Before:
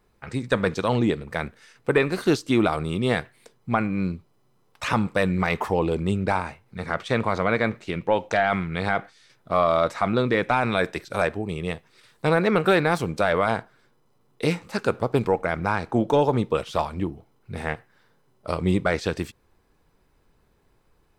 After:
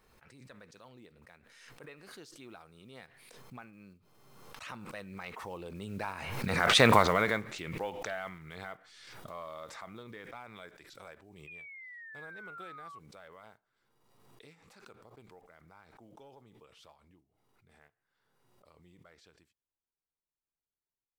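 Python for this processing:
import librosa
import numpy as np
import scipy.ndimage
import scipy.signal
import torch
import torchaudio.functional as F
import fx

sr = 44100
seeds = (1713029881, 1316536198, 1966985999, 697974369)

y = fx.block_float(x, sr, bits=7)
y = fx.doppler_pass(y, sr, speed_mps=15, closest_m=1.7, pass_at_s=6.91)
y = fx.tilt_shelf(y, sr, db=-3.5, hz=690.0)
y = fx.spec_paint(y, sr, seeds[0], shape='fall', start_s=11.47, length_s=1.52, low_hz=1100.0, high_hz=2500.0, level_db=-51.0)
y = fx.pre_swell(y, sr, db_per_s=36.0)
y = y * 10.0 ** (2.5 / 20.0)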